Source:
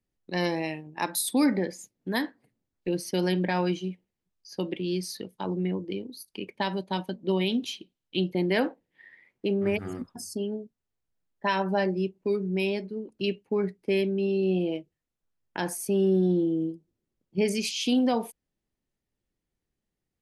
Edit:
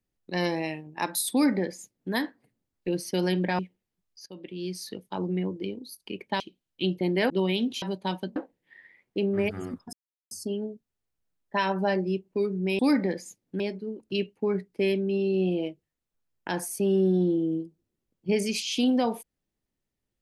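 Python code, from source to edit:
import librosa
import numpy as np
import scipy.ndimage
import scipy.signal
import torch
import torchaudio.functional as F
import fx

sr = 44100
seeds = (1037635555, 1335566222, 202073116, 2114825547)

y = fx.edit(x, sr, fx.duplicate(start_s=1.32, length_s=0.81, to_s=12.69),
    fx.cut(start_s=3.59, length_s=0.28),
    fx.fade_in_from(start_s=4.54, length_s=0.73, floor_db=-18.5),
    fx.swap(start_s=6.68, length_s=0.54, other_s=7.74, other_length_s=0.9),
    fx.insert_silence(at_s=10.21, length_s=0.38), tone=tone)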